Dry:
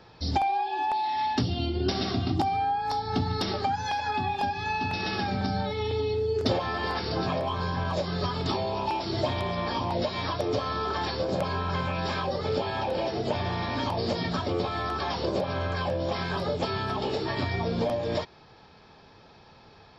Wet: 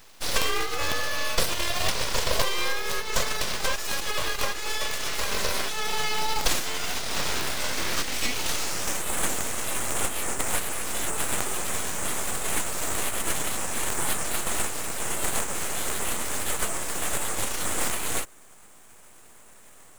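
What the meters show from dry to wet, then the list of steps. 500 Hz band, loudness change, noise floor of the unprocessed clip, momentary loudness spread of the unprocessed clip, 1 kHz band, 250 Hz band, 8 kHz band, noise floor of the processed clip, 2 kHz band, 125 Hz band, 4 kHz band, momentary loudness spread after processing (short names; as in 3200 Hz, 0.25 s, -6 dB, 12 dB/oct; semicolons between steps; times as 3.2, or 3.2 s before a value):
-5.0 dB, +1.5 dB, -54 dBFS, 2 LU, -4.5 dB, -7.5 dB, n/a, -50 dBFS, +5.5 dB, -9.5 dB, +5.0 dB, 3 LU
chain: spectral whitening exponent 0.3; high-pass sweep 230 Hz -> 3600 Hz, 7.29–9.03; full-wave rectifier; gain +2.5 dB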